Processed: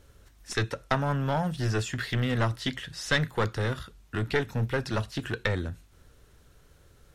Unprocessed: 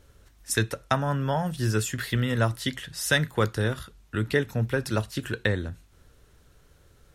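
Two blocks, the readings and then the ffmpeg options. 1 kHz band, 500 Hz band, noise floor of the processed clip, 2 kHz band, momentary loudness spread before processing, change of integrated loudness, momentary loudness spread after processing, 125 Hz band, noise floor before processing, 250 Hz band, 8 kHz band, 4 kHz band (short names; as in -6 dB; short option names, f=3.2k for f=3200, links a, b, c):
-1.0 dB, -2.5 dB, -59 dBFS, -2.0 dB, 7 LU, -2.5 dB, 7 LU, -2.0 dB, -59 dBFS, -2.5 dB, -8.0 dB, -2.0 dB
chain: -filter_complex "[0:a]aeval=exprs='clip(val(0),-1,0.0596)':c=same,acrossover=split=6400[a][b];[b]acompressor=threshold=-57dB:ratio=4:attack=1:release=60[c];[a][c]amix=inputs=2:normalize=0"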